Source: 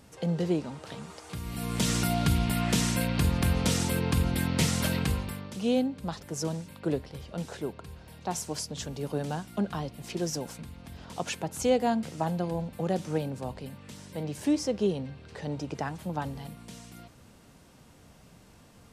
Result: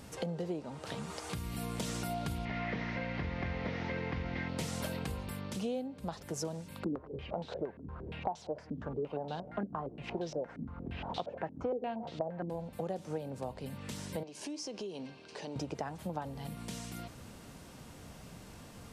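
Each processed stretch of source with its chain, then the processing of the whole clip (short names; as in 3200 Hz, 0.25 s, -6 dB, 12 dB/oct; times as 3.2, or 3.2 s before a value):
2.45–4.49 delta modulation 32 kbps, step -39.5 dBFS + LPF 4500 Hz + bell 2000 Hz +14 dB 0.45 oct
6.84–12.5 echo 0.167 s -22 dB + stepped low-pass 8.6 Hz 270–3800 Hz
14.23–15.56 speaker cabinet 390–9000 Hz, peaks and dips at 510 Hz -8 dB, 780 Hz -5 dB, 1300 Hz -9 dB, 1900 Hz -10 dB, 3600 Hz -5 dB, 7800 Hz -6 dB + compressor 5:1, threshold -42 dBFS
whole clip: dynamic EQ 620 Hz, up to +7 dB, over -42 dBFS, Q 0.89; compressor 5:1, threshold -41 dBFS; gain +4.5 dB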